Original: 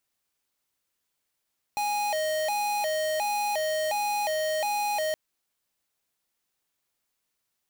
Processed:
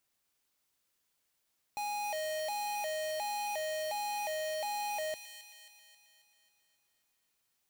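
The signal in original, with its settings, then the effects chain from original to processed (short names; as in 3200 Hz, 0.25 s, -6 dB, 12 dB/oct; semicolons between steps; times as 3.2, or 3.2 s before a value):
siren hi-lo 623–828 Hz 1.4/s square -27.5 dBFS 3.37 s
limiter -36 dBFS; thin delay 0.269 s, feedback 55%, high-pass 2600 Hz, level -7 dB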